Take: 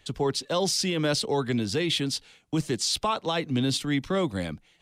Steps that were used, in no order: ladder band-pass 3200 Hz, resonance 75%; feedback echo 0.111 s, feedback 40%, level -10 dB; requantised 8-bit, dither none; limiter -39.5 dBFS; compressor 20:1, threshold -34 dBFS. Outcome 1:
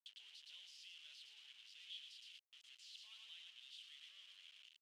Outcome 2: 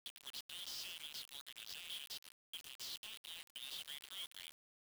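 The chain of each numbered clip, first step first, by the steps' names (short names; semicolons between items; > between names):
compressor > feedback echo > limiter > requantised > ladder band-pass; ladder band-pass > compressor > limiter > feedback echo > requantised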